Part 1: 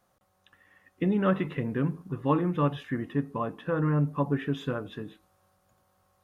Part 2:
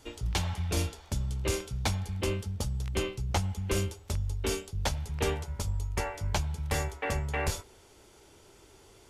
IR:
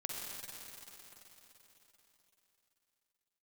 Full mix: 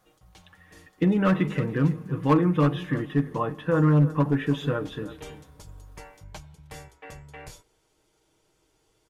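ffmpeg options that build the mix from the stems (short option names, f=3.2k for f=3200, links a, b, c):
-filter_complex "[0:a]volume=19dB,asoftclip=hard,volume=-19dB,volume=3dB,asplit=3[a][b][c];[b]volume=-22.5dB[d];[c]volume=-15.5dB[e];[1:a]volume=-12.5dB,afade=t=in:st=4.85:d=0.2:silence=0.298538[f];[2:a]atrim=start_sample=2205[g];[d][g]afir=irnorm=-1:irlink=0[h];[e]aecho=0:1:329:1[i];[a][f][h][i]amix=inputs=4:normalize=0,aecho=1:1:6.4:0.51"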